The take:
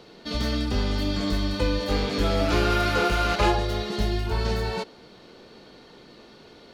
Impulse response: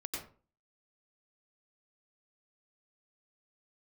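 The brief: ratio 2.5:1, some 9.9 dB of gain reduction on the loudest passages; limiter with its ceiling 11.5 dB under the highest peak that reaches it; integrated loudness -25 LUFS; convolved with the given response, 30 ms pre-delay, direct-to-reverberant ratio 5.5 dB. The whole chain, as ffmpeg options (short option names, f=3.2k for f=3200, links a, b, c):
-filter_complex "[0:a]acompressor=threshold=-33dB:ratio=2.5,alimiter=level_in=6dB:limit=-24dB:level=0:latency=1,volume=-6dB,asplit=2[a][b];[1:a]atrim=start_sample=2205,adelay=30[c];[b][c]afir=irnorm=-1:irlink=0,volume=-6dB[d];[a][d]amix=inputs=2:normalize=0,volume=13.5dB"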